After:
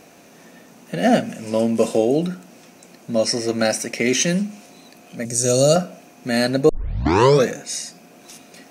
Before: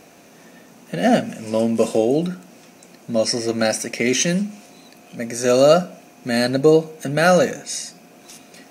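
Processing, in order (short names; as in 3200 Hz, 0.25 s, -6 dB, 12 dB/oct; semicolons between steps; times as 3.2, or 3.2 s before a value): 5.25–5.76 graphic EQ 125/250/1000/2000/8000 Hz +9/-4/-9/-9/+11 dB; 6.69 tape start 0.79 s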